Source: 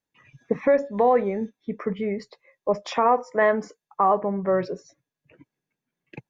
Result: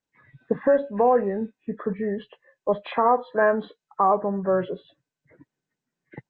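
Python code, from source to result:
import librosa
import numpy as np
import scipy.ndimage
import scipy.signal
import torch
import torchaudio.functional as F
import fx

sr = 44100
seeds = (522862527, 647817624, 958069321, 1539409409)

y = fx.freq_compress(x, sr, knee_hz=1300.0, ratio=1.5)
y = fx.notch(y, sr, hz=3600.0, q=18.0)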